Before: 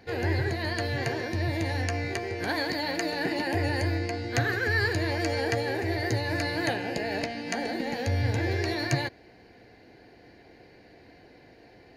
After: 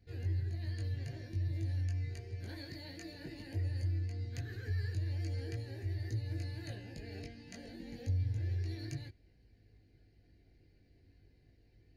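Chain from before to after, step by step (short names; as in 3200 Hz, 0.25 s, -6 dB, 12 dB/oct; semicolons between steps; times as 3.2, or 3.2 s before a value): passive tone stack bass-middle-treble 10-0-1; compressor 2:1, threshold -42 dBFS, peak gain reduction 5.5 dB; chorus voices 6, 0.29 Hz, delay 20 ms, depth 1.8 ms; gain +7 dB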